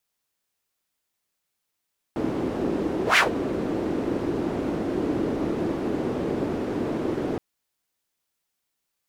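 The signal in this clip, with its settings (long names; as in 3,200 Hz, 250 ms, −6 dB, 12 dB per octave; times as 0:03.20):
pass-by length 5.22 s, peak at 0:01.01, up 0.12 s, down 0.14 s, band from 330 Hz, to 2,200 Hz, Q 2.3, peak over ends 10 dB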